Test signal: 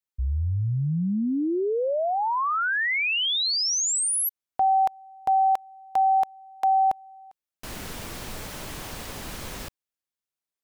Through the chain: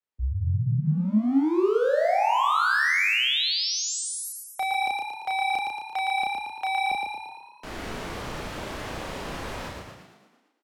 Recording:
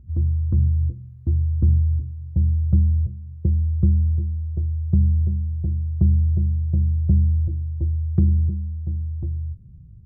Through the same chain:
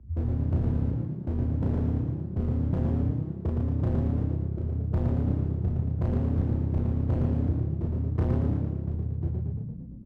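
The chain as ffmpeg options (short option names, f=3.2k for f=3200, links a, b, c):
-filter_complex "[0:a]aemphasis=mode=reproduction:type=75fm,acrossover=split=110|250[a][b][c];[c]acontrast=33[d];[a][b][d]amix=inputs=3:normalize=0,asoftclip=type=hard:threshold=-20.5dB,asplit=2[e][f];[f]adelay=33,volume=-2dB[g];[e][g]amix=inputs=2:normalize=0,asplit=9[h][i][j][k][l][m][n][o][p];[i]adelay=114,afreqshift=33,volume=-3.5dB[q];[j]adelay=228,afreqshift=66,volume=-8.5dB[r];[k]adelay=342,afreqshift=99,volume=-13.6dB[s];[l]adelay=456,afreqshift=132,volume=-18.6dB[t];[m]adelay=570,afreqshift=165,volume=-23.6dB[u];[n]adelay=684,afreqshift=198,volume=-28.7dB[v];[o]adelay=798,afreqshift=231,volume=-33.7dB[w];[p]adelay=912,afreqshift=264,volume=-38.8dB[x];[h][q][r][s][t][u][v][w][x]amix=inputs=9:normalize=0,volume=-4.5dB"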